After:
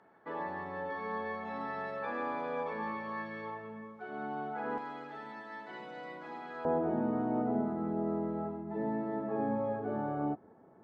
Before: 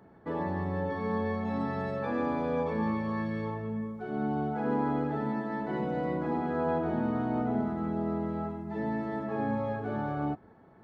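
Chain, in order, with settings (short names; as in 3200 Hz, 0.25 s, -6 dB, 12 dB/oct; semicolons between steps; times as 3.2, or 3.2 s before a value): band-pass 1600 Hz, Q 0.62, from 4.78 s 3900 Hz, from 6.65 s 460 Hz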